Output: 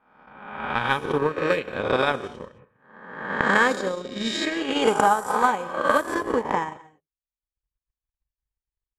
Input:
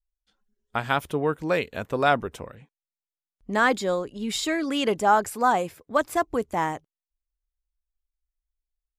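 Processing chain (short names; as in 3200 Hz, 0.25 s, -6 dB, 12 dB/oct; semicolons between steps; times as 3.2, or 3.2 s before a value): spectral swells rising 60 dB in 1.19 s; notch comb 690 Hz; low-pass opened by the level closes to 1900 Hz, open at -15.5 dBFS; non-linear reverb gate 0.24 s flat, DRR 8.5 dB; transient shaper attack +12 dB, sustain -9 dB; gain -3 dB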